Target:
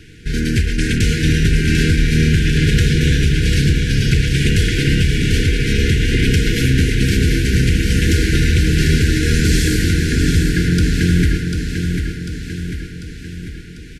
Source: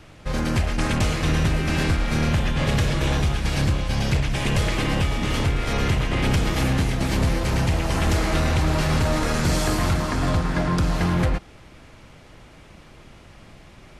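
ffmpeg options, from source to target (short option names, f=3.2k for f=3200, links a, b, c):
-filter_complex "[0:a]afftfilt=real='re*(1-between(b*sr/4096,490,1400))':imag='im*(1-between(b*sr/4096,490,1400))':win_size=4096:overlap=0.75,asplit=2[a][b];[b]aecho=0:1:745|1490|2235|2980|3725|4470|5215:0.501|0.271|0.146|0.0789|0.0426|0.023|0.0124[c];[a][c]amix=inputs=2:normalize=0,volume=6dB"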